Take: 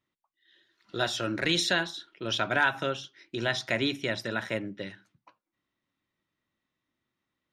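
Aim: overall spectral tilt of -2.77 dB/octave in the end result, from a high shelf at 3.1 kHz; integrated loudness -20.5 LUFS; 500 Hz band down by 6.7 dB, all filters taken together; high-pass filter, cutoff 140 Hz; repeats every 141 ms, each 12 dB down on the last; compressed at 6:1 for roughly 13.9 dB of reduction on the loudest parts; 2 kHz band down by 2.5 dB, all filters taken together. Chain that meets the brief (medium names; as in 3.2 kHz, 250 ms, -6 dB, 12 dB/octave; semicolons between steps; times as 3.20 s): high-pass 140 Hz; peaking EQ 500 Hz -9 dB; peaking EQ 2 kHz -4 dB; treble shelf 3.1 kHz +4 dB; compression 6:1, threshold -37 dBFS; feedback delay 141 ms, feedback 25%, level -12 dB; trim +20 dB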